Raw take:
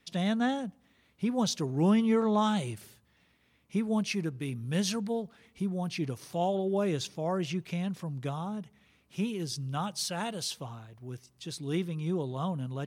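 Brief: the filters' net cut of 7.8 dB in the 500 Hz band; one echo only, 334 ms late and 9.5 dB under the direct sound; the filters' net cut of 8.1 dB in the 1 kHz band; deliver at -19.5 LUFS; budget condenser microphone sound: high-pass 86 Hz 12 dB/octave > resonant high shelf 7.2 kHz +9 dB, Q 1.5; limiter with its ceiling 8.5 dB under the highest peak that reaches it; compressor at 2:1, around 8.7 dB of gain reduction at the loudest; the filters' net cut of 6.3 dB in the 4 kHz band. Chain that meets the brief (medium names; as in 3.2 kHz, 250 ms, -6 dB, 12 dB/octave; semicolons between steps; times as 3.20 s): peaking EQ 500 Hz -8.5 dB; peaking EQ 1 kHz -7 dB; peaking EQ 4 kHz -5.5 dB; compression 2:1, threshold -39 dBFS; peak limiter -35.5 dBFS; high-pass 86 Hz 12 dB/octave; resonant high shelf 7.2 kHz +9 dB, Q 1.5; delay 334 ms -9.5 dB; trim +23 dB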